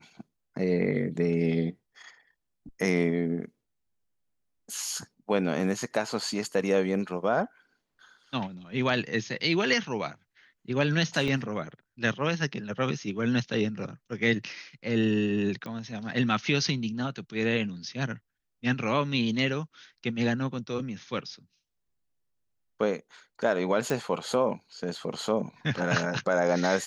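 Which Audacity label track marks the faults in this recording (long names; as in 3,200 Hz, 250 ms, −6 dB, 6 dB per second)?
11.280000	11.280000	drop-out 2.2 ms
15.660000	15.660000	click −25 dBFS
23.900000	23.900000	click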